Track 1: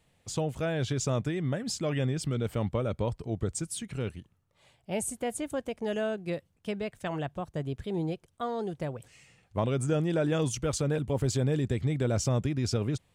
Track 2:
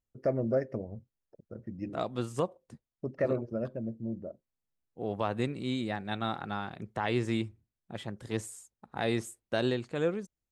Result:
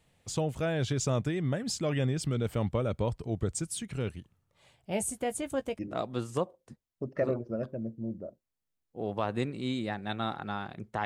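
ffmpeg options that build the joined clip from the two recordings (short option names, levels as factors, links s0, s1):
-filter_complex "[0:a]asettb=1/sr,asplit=3[s0][s1][s2];[s0]atrim=end=4.904[s3];[s1]atrim=start=4.9:end=5.79,asetpts=PTS-STARTPTS,afade=t=in:d=0.004:c=qsin,afade=t=out:st=0.886:d=0.004:c=qsin,asplit=2[s4][s5];[s5]adelay=15,volume=0.299[s6];[s4][s6]amix=inputs=2:normalize=0,atrim=end_sample=39249[s7];[s2]atrim=start=5.786[s8];[s3][s7]acrossfade=d=0.004:c1=hsin:c2=qsin[s9];[s9][s8]acrossfade=d=0.004:c1=qsin:c2=hsin,apad=whole_dur=11.05,atrim=end=11.05,atrim=end=5.792[s10];[1:a]atrim=start=1.808:end=7.07[s11];[s10][s11]acrossfade=d=0.004:c1=hsin:c2=hsin"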